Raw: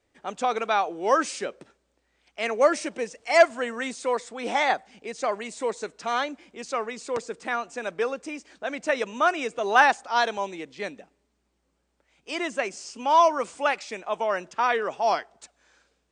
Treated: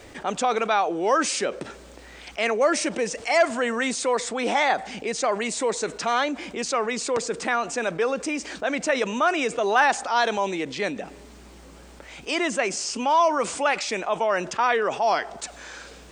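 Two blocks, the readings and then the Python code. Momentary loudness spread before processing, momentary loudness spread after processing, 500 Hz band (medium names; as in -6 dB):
15 LU, 9 LU, +1.5 dB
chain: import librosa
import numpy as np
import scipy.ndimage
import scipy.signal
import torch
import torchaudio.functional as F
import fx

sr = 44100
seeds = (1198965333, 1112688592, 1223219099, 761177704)

y = fx.env_flatten(x, sr, amount_pct=50)
y = y * 10.0 ** (-4.0 / 20.0)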